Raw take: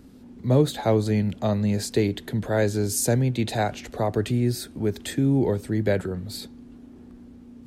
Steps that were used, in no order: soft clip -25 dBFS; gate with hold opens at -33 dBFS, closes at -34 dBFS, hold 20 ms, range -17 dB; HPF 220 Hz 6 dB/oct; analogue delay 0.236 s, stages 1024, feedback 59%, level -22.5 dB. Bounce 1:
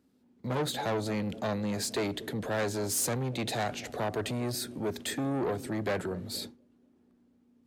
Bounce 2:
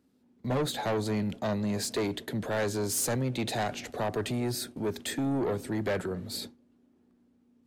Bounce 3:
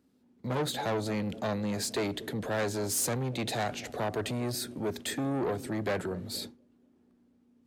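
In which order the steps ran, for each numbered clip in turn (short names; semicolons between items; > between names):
analogue delay > gate with hold > soft clip > HPF; HPF > soft clip > analogue delay > gate with hold; analogue delay > soft clip > gate with hold > HPF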